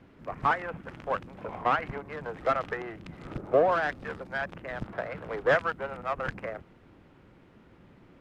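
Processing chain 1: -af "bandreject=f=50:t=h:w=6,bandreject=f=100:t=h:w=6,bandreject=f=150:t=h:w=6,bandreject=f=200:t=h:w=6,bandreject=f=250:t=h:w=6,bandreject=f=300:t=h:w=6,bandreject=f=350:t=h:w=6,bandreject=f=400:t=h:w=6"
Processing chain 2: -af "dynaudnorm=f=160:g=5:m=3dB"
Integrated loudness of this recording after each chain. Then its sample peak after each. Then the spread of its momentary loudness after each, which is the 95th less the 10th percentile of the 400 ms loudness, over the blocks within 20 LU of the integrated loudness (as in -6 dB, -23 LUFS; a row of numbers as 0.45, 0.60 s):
-30.5, -28.0 LUFS; -11.0, -8.0 dBFS; 15, 15 LU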